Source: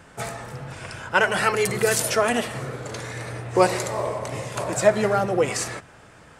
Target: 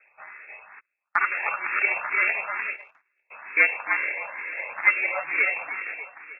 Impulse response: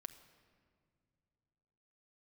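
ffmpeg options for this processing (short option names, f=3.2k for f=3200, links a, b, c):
-filter_complex "[0:a]lowshelf=f=230:g=-8,aeval=exprs='0.631*(cos(1*acos(clip(val(0)/0.631,-1,1)))-cos(1*PI/2))+0.0501*(cos(6*acos(clip(val(0)/0.631,-1,1)))-cos(6*PI/2))+0.0224*(cos(7*acos(clip(val(0)/0.631,-1,1)))-cos(7*PI/2))':c=same,dynaudnorm=f=270:g=7:m=7dB,aecho=1:1:302|604|906|1208|1510:0.708|0.262|0.0969|0.0359|0.0133,acrusher=samples=16:mix=1:aa=0.000001,lowpass=f=2.3k:t=q:w=0.5098,lowpass=f=2.3k:t=q:w=0.6013,lowpass=f=2.3k:t=q:w=0.9,lowpass=f=2.3k:t=q:w=2.563,afreqshift=-2700,asplit=3[a][b][c];[a]afade=t=out:st=0.79:d=0.02[d];[b]agate=range=-39dB:threshold=-25dB:ratio=16:detection=peak,afade=t=in:st=0.79:d=0.02,afade=t=out:st=3.3:d=0.02[e];[c]afade=t=in:st=3.3:d=0.02[f];[d][e][f]amix=inputs=3:normalize=0,asplit=2[g][h];[h]afreqshift=2.2[i];[g][i]amix=inputs=2:normalize=1,volume=-3.5dB"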